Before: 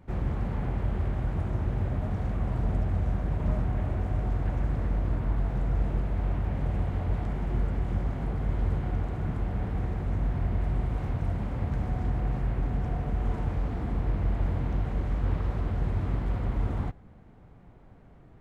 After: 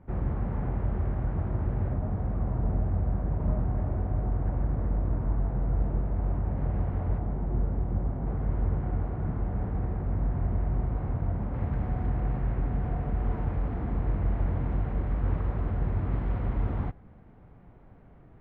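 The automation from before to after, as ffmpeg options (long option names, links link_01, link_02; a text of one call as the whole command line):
ffmpeg -i in.wav -af "asetnsamples=nb_out_samples=441:pad=0,asendcmd='1.94 lowpass f 1200;6.58 lowpass f 1500;7.18 lowpass f 1000;8.26 lowpass f 1400;11.54 lowpass f 2100;16.12 lowpass f 2600',lowpass=1600" out.wav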